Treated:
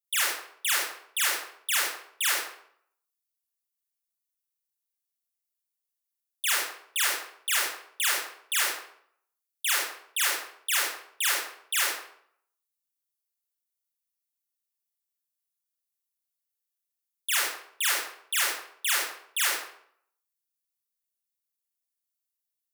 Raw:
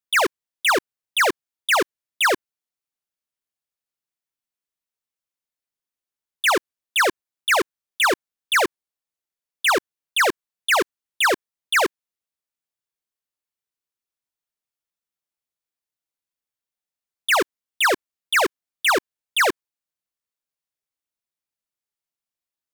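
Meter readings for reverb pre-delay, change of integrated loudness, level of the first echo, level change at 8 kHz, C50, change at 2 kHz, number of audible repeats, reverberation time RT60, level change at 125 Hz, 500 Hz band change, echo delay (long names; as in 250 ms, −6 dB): 28 ms, −5.5 dB, no echo audible, +2.0 dB, 0.0 dB, −8.5 dB, no echo audible, 0.65 s, can't be measured, −20.0 dB, no echo audible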